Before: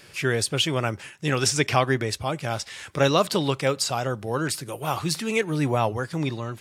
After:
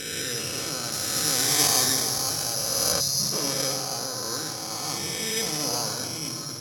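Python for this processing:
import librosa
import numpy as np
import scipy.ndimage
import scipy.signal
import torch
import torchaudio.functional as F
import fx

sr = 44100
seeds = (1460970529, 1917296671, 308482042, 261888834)

y = fx.spec_swells(x, sr, rise_s=2.66)
y = fx.room_shoebox(y, sr, seeds[0], volume_m3=3500.0, walls='mixed', distance_m=2.0)
y = (np.kron(scipy.signal.resample_poly(y, 1, 8), np.eye(8)[0]) * 8)[:len(y)]
y = fx.high_shelf(y, sr, hz=5700.0, db=9.0, at=(0.92, 2.92))
y = fx.spec_erase(y, sr, start_s=3.0, length_s=0.33, low_hz=220.0, high_hz=3400.0)
y = np.sign(y) * np.maximum(np.abs(y) - 10.0 ** (-25.5 / 20.0), 0.0)
y = scipy.signal.sosfilt(scipy.signal.butter(2, 7900.0, 'lowpass', fs=sr, output='sos'), y)
y = fx.sustainer(y, sr, db_per_s=33.0)
y = F.gain(torch.from_numpy(y), -16.0).numpy()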